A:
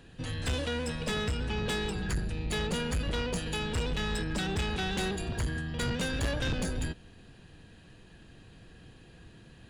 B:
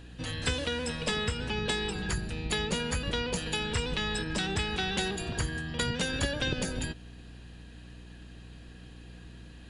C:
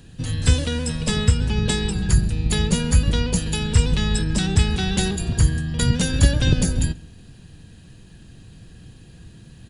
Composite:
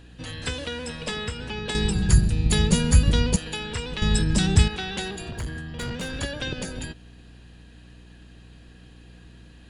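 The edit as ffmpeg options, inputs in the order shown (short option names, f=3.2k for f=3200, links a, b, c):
-filter_complex "[2:a]asplit=2[a][b];[1:a]asplit=4[c][d][e][f];[c]atrim=end=1.752[g];[a]atrim=start=1.748:end=3.362[h];[d]atrim=start=3.358:end=4.022[i];[b]atrim=start=4.018:end=4.682[j];[e]atrim=start=4.678:end=5.312[k];[0:a]atrim=start=5.308:end=6.192[l];[f]atrim=start=6.188[m];[g][h]acrossfade=d=0.004:c1=hsin:c2=hsin[n];[n][i]acrossfade=d=0.004:c1=hsin:c2=hsin[o];[o][j]acrossfade=d=0.004:c1=hsin:c2=hsin[p];[p][k]acrossfade=d=0.004:c1=hsin:c2=hsin[q];[q][l]acrossfade=d=0.004:c1=hsin:c2=hsin[r];[r][m]acrossfade=d=0.004:c1=hsin:c2=hsin"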